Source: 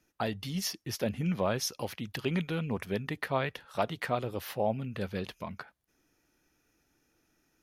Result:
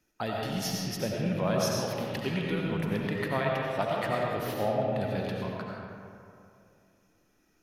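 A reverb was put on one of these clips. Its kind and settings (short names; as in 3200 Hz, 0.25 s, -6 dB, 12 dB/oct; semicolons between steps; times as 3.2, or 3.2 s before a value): digital reverb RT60 2.5 s, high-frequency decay 0.5×, pre-delay 50 ms, DRR -2.5 dB; gain -1.5 dB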